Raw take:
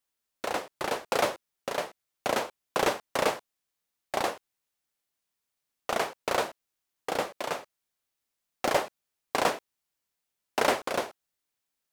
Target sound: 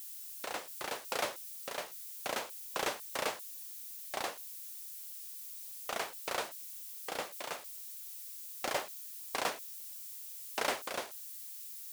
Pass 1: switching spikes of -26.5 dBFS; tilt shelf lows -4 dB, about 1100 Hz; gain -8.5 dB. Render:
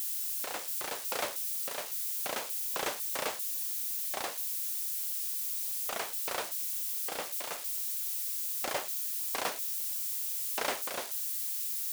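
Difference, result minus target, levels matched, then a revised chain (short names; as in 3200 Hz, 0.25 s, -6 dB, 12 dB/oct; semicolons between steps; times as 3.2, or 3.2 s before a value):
switching spikes: distortion +11 dB
switching spikes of -38 dBFS; tilt shelf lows -4 dB, about 1100 Hz; gain -8.5 dB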